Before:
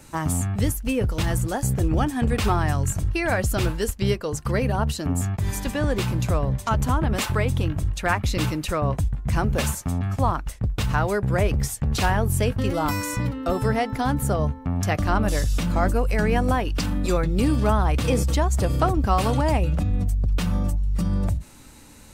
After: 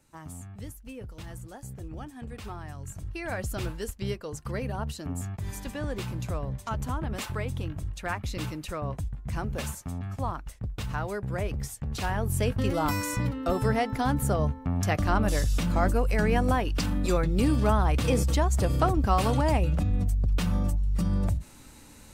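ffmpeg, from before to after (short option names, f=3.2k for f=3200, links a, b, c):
-af "volume=-3dB,afade=t=in:st=2.76:d=0.65:silence=0.375837,afade=t=in:st=12.01:d=0.59:silence=0.473151"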